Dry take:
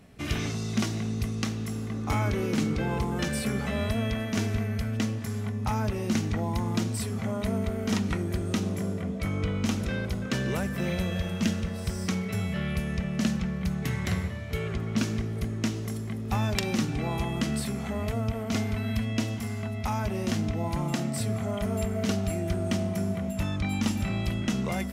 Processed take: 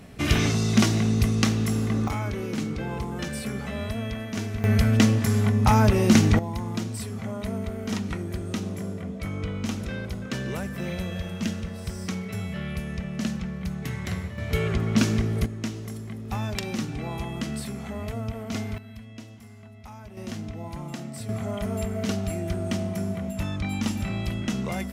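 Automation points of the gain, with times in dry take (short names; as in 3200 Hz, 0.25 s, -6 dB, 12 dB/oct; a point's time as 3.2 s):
+8 dB
from 2.08 s -2.5 dB
from 4.64 s +10 dB
from 6.39 s -2 dB
from 14.38 s +6 dB
from 15.46 s -2.5 dB
from 18.78 s -14 dB
from 20.17 s -6.5 dB
from 21.29 s 0 dB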